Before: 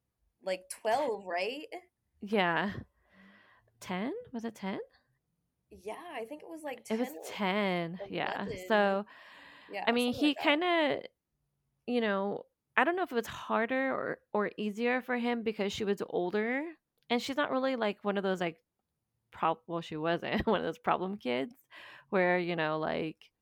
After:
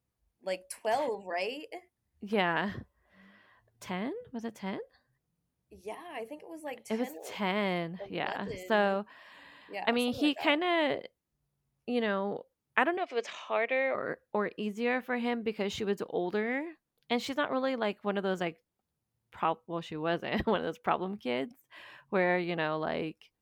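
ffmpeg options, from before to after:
ffmpeg -i in.wav -filter_complex "[0:a]asettb=1/sr,asplit=3[link_01][link_02][link_03];[link_01]atrim=end=12.974[link_04];[link_02]atrim=start=12.97:end=13.95,asetpts=PTS-STARTPTS,afade=type=in:duration=0.004:curve=qsin,afade=type=out:start_time=0.976:duration=0.004:curve=qsin,highpass=frequency=310:width=0.5412,highpass=frequency=310:width=1.3066,equalizer=frequency=320:width_type=q:width=4:gain=-7,equalizer=frequency=580:width_type=q:width=4:gain=7,equalizer=frequency=970:width_type=q:width=4:gain=-5,equalizer=frequency=1500:width_type=q:width=4:gain=-7,equalizer=frequency=2300:width_type=q:width=4:gain=10,equalizer=frequency=5100:width_type=q:width=4:gain=5,lowpass=frequency=7200:width=0.5412,lowpass=frequency=7200:width=1.3066[link_05];[link_03]atrim=start=13.946[link_06];[link_04][link_05]acrossfade=duration=0.004:curve1=hsin:curve2=qsin[link_07];[link_07][link_06]acrossfade=duration=0.004:curve1=qsin:curve2=hsin" out.wav

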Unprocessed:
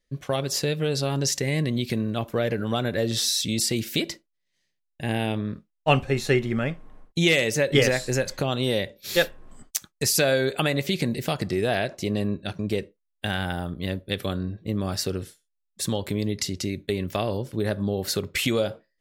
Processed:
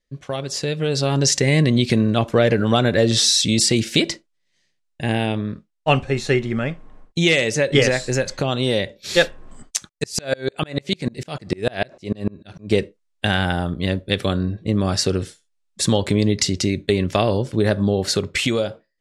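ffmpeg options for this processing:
ffmpeg -i in.wav -filter_complex "[0:a]asettb=1/sr,asplit=3[link_01][link_02][link_03];[link_01]atrim=end=9.894[link_04];[link_02]atrim=start=9.89:end=12.72,asetpts=PTS-STARTPTS,afade=type=in:duration=0.004:curve=qsin,afade=type=out:start_time=2.826:duration=0.004:curve=qsin,aeval=exprs='val(0)*pow(10,-33*if(lt(mod(-6.7*n/s,1),2*abs(-6.7)/1000),1-mod(-6.7*n/s,1)/(2*abs(-6.7)/1000),(mod(-6.7*n/s,1)-2*abs(-6.7)/1000)/(1-2*abs(-6.7)/1000))/20)':channel_layout=same[link_05];[link_03]atrim=start=12.716[link_06];[link_04][link_05]acrossfade=duration=0.004:curve1=hsin:curve2=qsin[link_07];[link_07][link_06]acrossfade=duration=0.004:curve1=qsin:curve2=hsin,lowpass=frequency=9200:width=0.5412,lowpass=frequency=9200:width=1.3066,dynaudnorm=framelen=290:gausssize=7:maxgain=11.5dB,volume=-1dB" out.wav

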